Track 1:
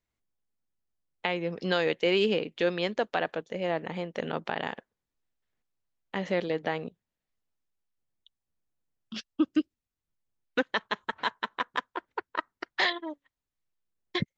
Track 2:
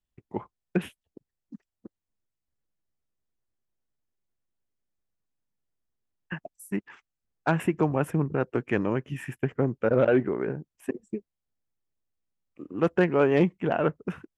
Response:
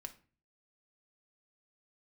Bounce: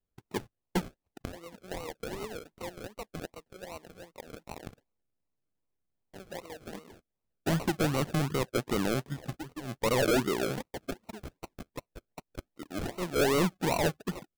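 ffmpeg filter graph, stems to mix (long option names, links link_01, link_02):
-filter_complex "[0:a]highpass=frequency=670:poles=1,acrusher=bits=3:mode=log:mix=0:aa=0.000001,adynamicsmooth=sensitivity=6.5:basefreq=2800,volume=-9.5dB,asplit=2[link_01][link_02];[1:a]asoftclip=type=hard:threshold=-21.5dB,volume=-1dB[link_03];[link_02]apad=whole_len=633953[link_04];[link_03][link_04]sidechaincompress=threshold=-59dB:ratio=10:attack=43:release=106[link_05];[link_01][link_05]amix=inputs=2:normalize=0,acrusher=samples=37:mix=1:aa=0.000001:lfo=1:lforange=22.2:lforate=2.6"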